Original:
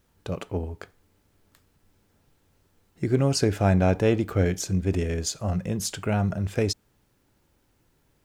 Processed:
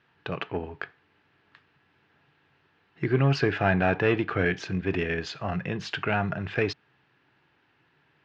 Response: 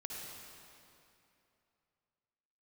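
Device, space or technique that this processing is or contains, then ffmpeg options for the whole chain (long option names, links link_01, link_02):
overdrive pedal into a guitar cabinet: -filter_complex "[0:a]asplit=2[link_01][link_02];[link_02]highpass=frequency=720:poles=1,volume=13dB,asoftclip=type=tanh:threshold=-9dB[link_03];[link_01][link_03]amix=inputs=2:normalize=0,lowpass=frequency=2300:poles=1,volume=-6dB,highpass=100,equalizer=frequency=140:width_type=q:width=4:gain=8,equalizer=frequency=220:width_type=q:width=4:gain=-4,equalizer=frequency=550:width_type=q:width=4:gain=-8,equalizer=frequency=1700:width_type=q:width=4:gain=7,equalizer=frequency=2700:width_type=q:width=4:gain=6,lowpass=frequency=4300:width=0.5412,lowpass=frequency=4300:width=1.3066,volume=-1dB"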